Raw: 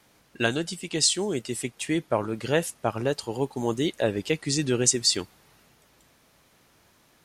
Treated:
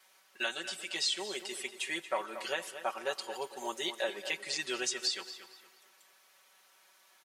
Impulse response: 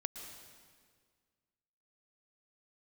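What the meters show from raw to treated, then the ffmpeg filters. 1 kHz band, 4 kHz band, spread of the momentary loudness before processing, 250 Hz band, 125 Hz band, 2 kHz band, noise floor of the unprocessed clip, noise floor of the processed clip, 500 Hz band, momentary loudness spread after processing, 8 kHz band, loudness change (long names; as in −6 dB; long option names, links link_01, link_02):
−5.0 dB, −6.0 dB, 8 LU, −18.5 dB, −31.5 dB, −3.5 dB, −62 dBFS, −65 dBFS, −11.5 dB, 8 LU, −12.5 dB, −9.5 dB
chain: -filter_complex "[0:a]highpass=810,acrossover=split=4700[link_01][link_02];[link_02]acompressor=threshold=-40dB:ratio=4:attack=1:release=60[link_03];[link_01][link_03]amix=inputs=2:normalize=0,aecho=1:1:5.3:0.96,alimiter=limit=-16dB:level=0:latency=1:release=284,asplit=2[link_04][link_05];[link_05]adelay=231,lowpass=frequency=4400:poles=1,volume=-11dB,asplit=2[link_06][link_07];[link_07]adelay=231,lowpass=frequency=4400:poles=1,volume=0.38,asplit=2[link_08][link_09];[link_09]adelay=231,lowpass=frequency=4400:poles=1,volume=0.38,asplit=2[link_10][link_11];[link_11]adelay=231,lowpass=frequency=4400:poles=1,volume=0.38[link_12];[link_04][link_06][link_08][link_10][link_12]amix=inputs=5:normalize=0,asplit=2[link_13][link_14];[1:a]atrim=start_sample=2205,afade=type=out:start_time=0.45:duration=0.01,atrim=end_sample=20286,highshelf=frequency=12000:gain=10.5[link_15];[link_14][link_15]afir=irnorm=-1:irlink=0,volume=-11dB[link_16];[link_13][link_16]amix=inputs=2:normalize=0,volume=-6dB"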